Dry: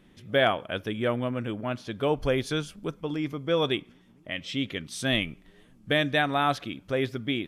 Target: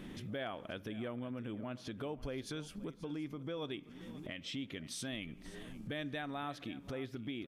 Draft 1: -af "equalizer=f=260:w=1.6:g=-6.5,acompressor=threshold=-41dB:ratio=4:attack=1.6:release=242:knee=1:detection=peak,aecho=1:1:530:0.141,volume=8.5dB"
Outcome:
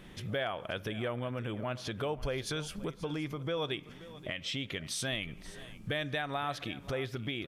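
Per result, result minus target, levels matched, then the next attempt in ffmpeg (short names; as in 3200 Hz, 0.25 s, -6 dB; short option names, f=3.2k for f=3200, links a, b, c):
compressor: peak gain reduction -7.5 dB; 250 Hz band -5.0 dB
-af "equalizer=f=260:w=1.6:g=-6.5,acompressor=threshold=-50.5dB:ratio=4:attack=1.6:release=242:knee=1:detection=peak,aecho=1:1:530:0.141,volume=8.5dB"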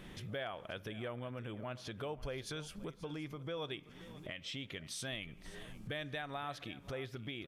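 250 Hz band -4.5 dB
-af "equalizer=f=260:w=1.6:g=4,acompressor=threshold=-50.5dB:ratio=4:attack=1.6:release=242:knee=1:detection=peak,aecho=1:1:530:0.141,volume=8.5dB"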